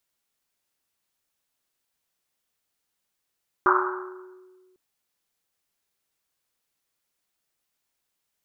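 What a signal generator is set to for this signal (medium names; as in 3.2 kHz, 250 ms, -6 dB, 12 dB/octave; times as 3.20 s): Risset drum, pitch 370 Hz, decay 1.80 s, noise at 1.2 kHz, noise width 580 Hz, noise 60%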